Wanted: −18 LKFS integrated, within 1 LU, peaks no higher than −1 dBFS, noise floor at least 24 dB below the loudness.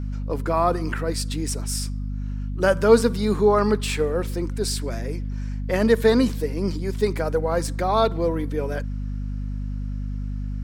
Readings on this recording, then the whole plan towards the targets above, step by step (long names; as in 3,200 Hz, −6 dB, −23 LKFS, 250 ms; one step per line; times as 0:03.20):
mains hum 50 Hz; hum harmonics up to 250 Hz; level of the hum −26 dBFS; integrated loudness −23.5 LKFS; sample peak −4.0 dBFS; target loudness −18.0 LKFS
→ hum removal 50 Hz, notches 5
level +5.5 dB
brickwall limiter −1 dBFS